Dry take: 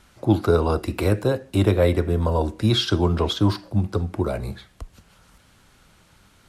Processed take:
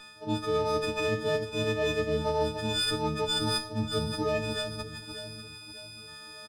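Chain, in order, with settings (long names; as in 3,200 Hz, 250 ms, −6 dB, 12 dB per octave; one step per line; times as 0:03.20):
every partial snapped to a pitch grid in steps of 6 semitones
high-pass filter 120 Hz 12 dB per octave
high-shelf EQ 3,700 Hz +6.5 dB
reversed playback
downward compressor 6 to 1, threshold −27 dBFS, peak gain reduction 18 dB
reversed playback
gain on a spectral selection 0:04.98–0:06.08, 600–2,000 Hz −13 dB
delay that swaps between a low-pass and a high-pass 297 ms, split 1,200 Hz, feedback 67%, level −7 dB
on a send at −14.5 dB: convolution reverb RT60 0.75 s, pre-delay 4 ms
on the sum: downsampling to 11,025 Hz
windowed peak hold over 3 samples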